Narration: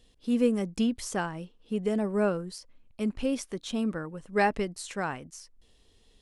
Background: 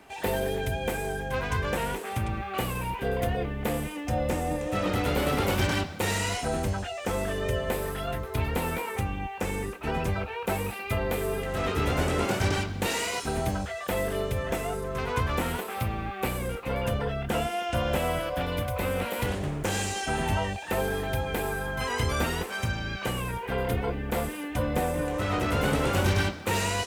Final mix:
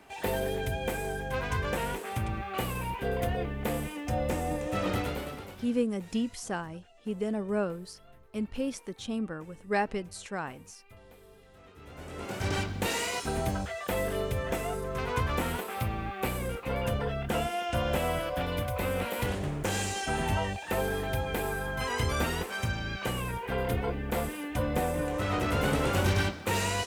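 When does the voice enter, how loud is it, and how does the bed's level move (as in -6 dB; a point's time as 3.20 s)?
5.35 s, -3.5 dB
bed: 4.96 s -2.5 dB
5.72 s -26 dB
11.75 s -26 dB
12.58 s -2 dB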